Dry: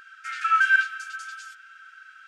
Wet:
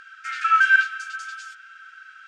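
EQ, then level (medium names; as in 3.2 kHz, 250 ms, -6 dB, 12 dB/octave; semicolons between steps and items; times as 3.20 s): low-pass 8.1 kHz 12 dB/octave; +3.0 dB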